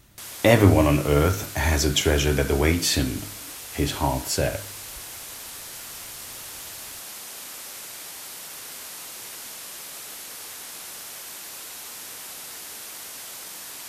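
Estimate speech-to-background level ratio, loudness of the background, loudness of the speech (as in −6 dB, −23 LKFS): 14.0 dB, −35.5 LKFS, −21.5 LKFS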